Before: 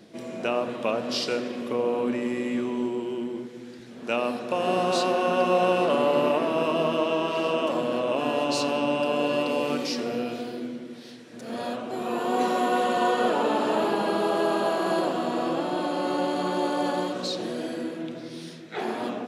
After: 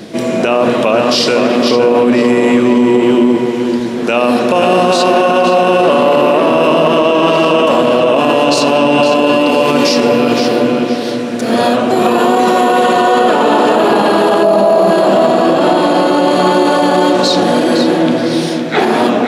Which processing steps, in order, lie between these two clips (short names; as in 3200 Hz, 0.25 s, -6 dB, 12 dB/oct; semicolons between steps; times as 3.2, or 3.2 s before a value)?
14.43–14.91 thirty-one-band EQ 200 Hz +10 dB, 630 Hz +12 dB, 1600 Hz -11 dB, 3150 Hz -9 dB, 8000 Hz -5 dB; on a send: tape echo 0.512 s, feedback 41%, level -6 dB, low-pass 3700 Hz; on the sum: maximiser +22 dB; gain -1 dB